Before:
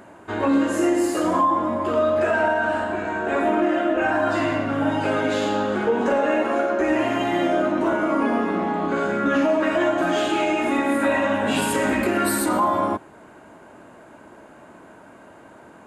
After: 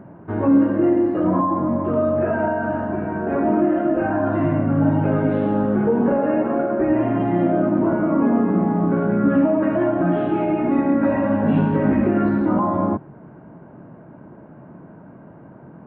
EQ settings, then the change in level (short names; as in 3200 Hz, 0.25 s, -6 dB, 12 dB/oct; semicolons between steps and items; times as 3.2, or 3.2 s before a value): air absorption 440 m; tape spacing loss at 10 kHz 42 dB; bell 150 Hz +14.5 dB 0.96 oct; +3.0 dB